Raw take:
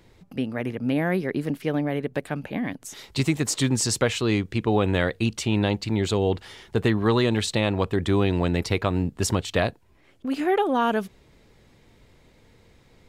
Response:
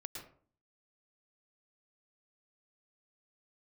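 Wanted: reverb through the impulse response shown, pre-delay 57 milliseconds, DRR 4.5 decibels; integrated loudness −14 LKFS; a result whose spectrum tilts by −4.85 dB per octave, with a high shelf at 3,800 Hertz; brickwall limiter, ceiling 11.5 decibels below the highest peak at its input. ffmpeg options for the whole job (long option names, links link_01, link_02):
-filter_complex "[0:a]highshelf=frequency=3800:gain=4,alimiter=limit=-19dB:level=0:latency=1,asplit=2[link_01][link_02];[1:a]atrim=start_sample=2205,adelay=57[link_03];[link_02][link_03]afir=irnorm=-1:irlink=0,volume=-1.5dB[link_04];[link_01][link_04]amix=inputs=2:normalize=0,volume=13.5dB"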